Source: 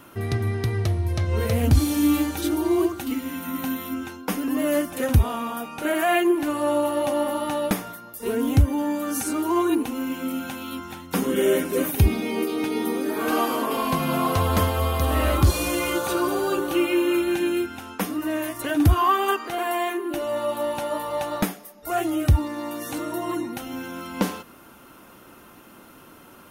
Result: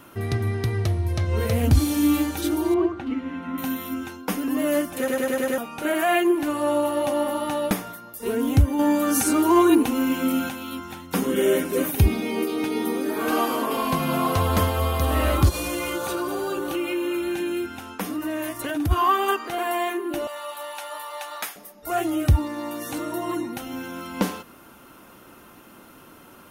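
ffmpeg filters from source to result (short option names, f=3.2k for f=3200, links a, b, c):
-filter_complex "[0:a]asettb=1/sr,asplit=3[a][b][c];[a]atrim=end=2.744[d];[b]atrim=start=2.74:end=3.58,asetpts=PTS-STARTPTS,afade=t=in:d=0.004:c=qsin,afade=t=out:st=0.836:d=0.004:c=qsin,lowpass=2.2k[e];[c]atrim=start=3.576[f];[d][e]acrossfade=d=0.004:c1=hsin:c2=qsin[g];[g][f]acrossfade=d=0.004:c1=qsin:c2=hsin,asettb=1/sr,asplit=3[h][i][j];[h]atrim=end=8.794[k];[i]atrim=start=8.79:end=10.49,asetpts=PTS-STARTPTS,afade=t=in:d=0.004:c=qsin,afade=t=out:st=1.696:d=0.004:c=qsin,acontrast=38[l];[j]atrim=start=10.486[m];[k][l]acrossfade=d=0.004:c1=hsin:c2=qsin[n];[n][m]acrossfade=d=0.004:c1=qsin:c2=hsin,asplit=3[o][p][q];[o]afade=t=out:st=15.48:d=0.02[r];[p]acompressor=threshold=-24dB:ratio=3:attack=3.2:release=140:knee=1:detection=peak,afade=t=in:st=15.48:d=0.02,afade=t=out:st=18.9:d=0.02[s];[q]afade=t=in:st=18.9:d=0.02[t];[r][s][t]amix=inputs=3:normalize=0,asettb=1/sr,asplit=3[u][v][w];[u]atrim=end=20.274[x];[v]atrim=start=20.27:end=21.56,asetpts=PTS-STARTPTS,afade=t=in:d=0.004:c=qsin,afade=t=out:st=1.286:d=0.004:c=qsin,highpass=1.1k[y];[w]atrim=start=21.556[z];[x][y]acrossfade=d=0.004:c1=hsin:c2=qsin[aa];[aa][z]acrossfade=d=0.004:c1=qsin:c2=hsin,asplit=7[ab][ac][ad][ae][af][ag][ah];[ab]atrim=end=5.082[ai];[ac]atrim=start=4.978:end=5.082[aj];[ad]atrim=start=4.978:end=5.082[ak];[ae]atrim=start=4.978:end=5.082[al];[af]atrim=start=4.978:end=5.082[am];[ag]atrim=start=4.978:end=5.082[an];[ah]atrim=start=5.578[ao];[ai][aj]acrossfade=d=0.004:c1=hsin:c2=hsin[ap];[ap][ak]acrossfade=d=0.004:c1=hsin:c2=hsin[aq];[aq][al]acrossfade=d=0.004:c1=hsin:c2=hsin[ar];[ar][am]acrossfade=d=0.004:c1=hsin:c2=hsin[as];[as][an]acrossfade=d=0.004:c1=hsin:c2=hsin[at];[at][ao]acrossfade=d=0.004:c1=hsin:c2=hsin"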